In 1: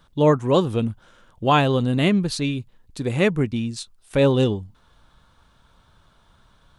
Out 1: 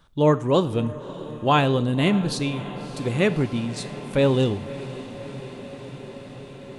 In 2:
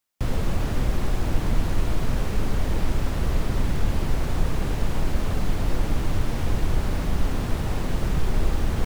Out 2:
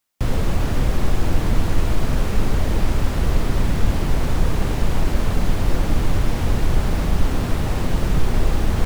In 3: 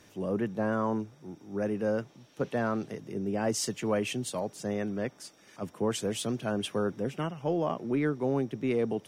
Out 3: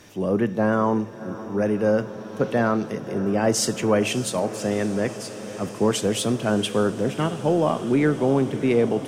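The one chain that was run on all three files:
echo that smears into a reverb 600 ms, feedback 79%, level -15.5 dB; Schroeder reverb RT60 0.68 s, combs from 26 ms, DRR 15.5 dB; normalise loudness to -23 LUFS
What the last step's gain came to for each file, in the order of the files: -1.5 dB, +4.0 dB, +8.5 dB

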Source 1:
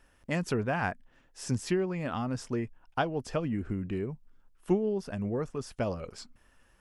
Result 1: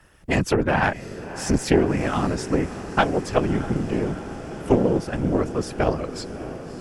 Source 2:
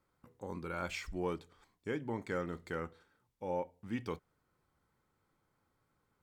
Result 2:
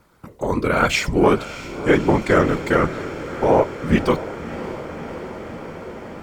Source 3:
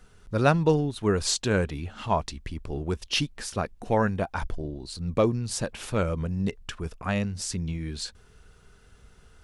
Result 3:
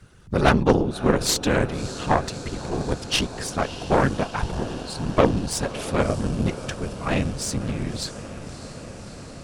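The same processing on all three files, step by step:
whisper effect; echo that smears into a reverb 618 ms, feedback 78%, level -14 dB; Chebyshev shaper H 4 -12 dB, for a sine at -7 dBFS; peak normalisation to -2 dBFS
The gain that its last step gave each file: +9.5 dB, +21.0 dB, +3.5 dB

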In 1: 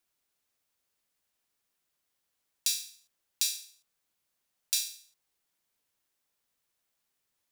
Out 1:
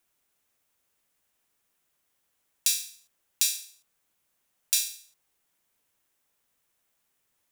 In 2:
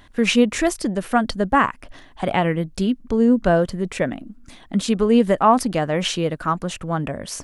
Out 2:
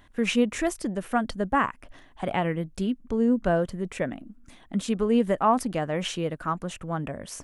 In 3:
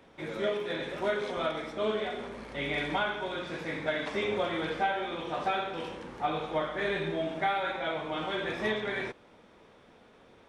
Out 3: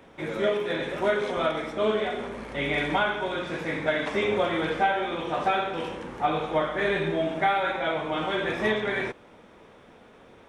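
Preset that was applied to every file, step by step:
peaking EQ 4.5 kHz -5 dB 0.69 oct; normalise loudness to -27 LUFS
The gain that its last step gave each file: +6.0 dB, -6.5 dB, +5.5 dB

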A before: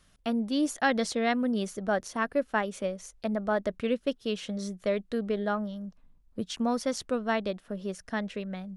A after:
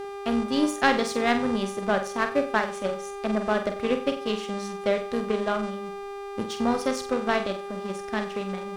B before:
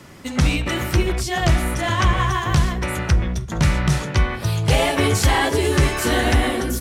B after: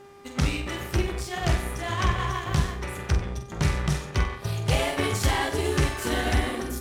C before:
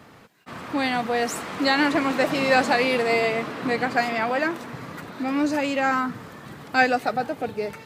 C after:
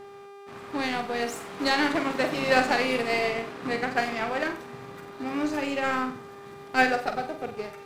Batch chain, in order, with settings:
mains buzz 400 Hz, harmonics 23, -33 dBFS -9 dB/octave; power-law waveshaper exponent 1.4; flutter echo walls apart 8 m, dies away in 0.36 s; normalise loudness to -27 LUFS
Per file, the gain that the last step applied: +7.0 dB, -5.0 dB, -0.5 dB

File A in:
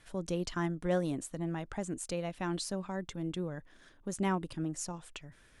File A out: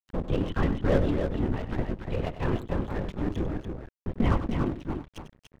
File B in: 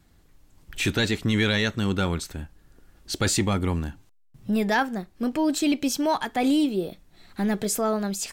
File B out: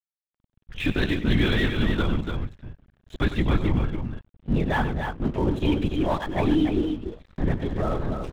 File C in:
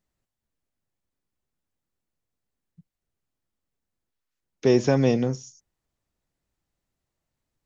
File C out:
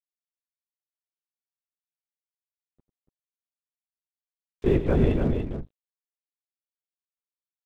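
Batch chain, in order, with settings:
bass shelf 190 Hz +8.5 dB; LPC vocoder at 8 kHz whisper; crossover distortion -40.5 dBFS; loudspeakers at several distances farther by 33 m -12 dB, 99 m -6 dB; peak normalisation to -9 dBFS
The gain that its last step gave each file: +6.0 dB, -2.0 dB, -4.5 dB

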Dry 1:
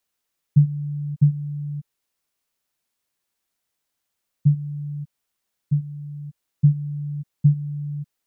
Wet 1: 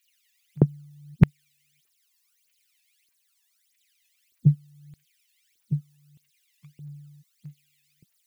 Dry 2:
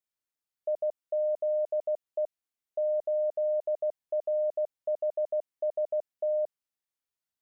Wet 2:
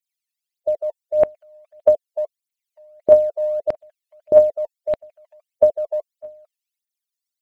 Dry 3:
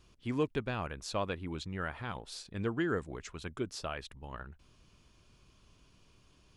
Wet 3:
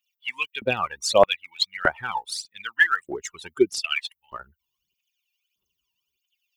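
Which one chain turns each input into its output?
expander on every frequency bin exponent 2; LFO high-pass square 0.81 Hz 390–2200 Hz; phaser 1.6 Hz, delay 1.2 ms, feedback 77%; peak normalisation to -1.5 dBFS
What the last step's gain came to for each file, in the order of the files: +10.5 dB, +7.0 dB, +15.5 dB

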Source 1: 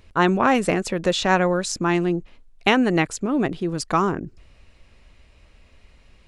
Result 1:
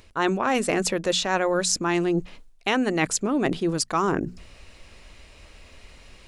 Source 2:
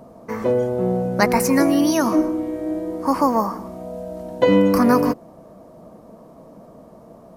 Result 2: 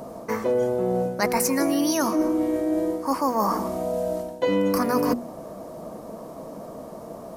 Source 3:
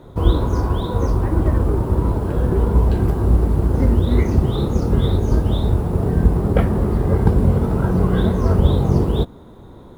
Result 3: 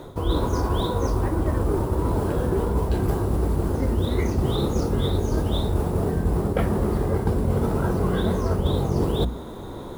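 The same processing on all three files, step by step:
tone controls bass -4 dB, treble +5 dB; hum notches 60/120/180/240 Hz; reverse; compression 5:1, threshold -28 dBFS; reverse; normalise loudness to -24 LUFS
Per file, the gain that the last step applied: +7.0 dB, +7.0 dB, +8.0 dB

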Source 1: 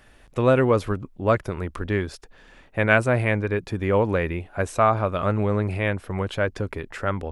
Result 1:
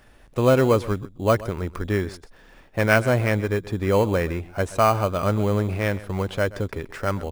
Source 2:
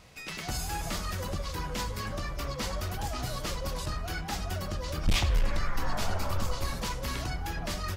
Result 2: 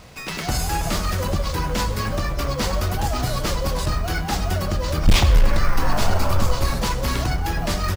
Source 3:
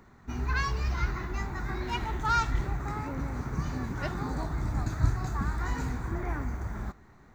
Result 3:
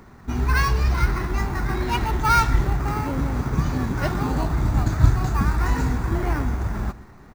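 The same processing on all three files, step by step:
in parallel at -8.5 dB: sample-rate reducer 3.6 kHz, jitter 0%; on the sum: delay 129 ms -18 dB; normalise loudness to -23 LUFS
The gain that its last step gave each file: -1.5 dB, +8.5 dB, +7.0 dB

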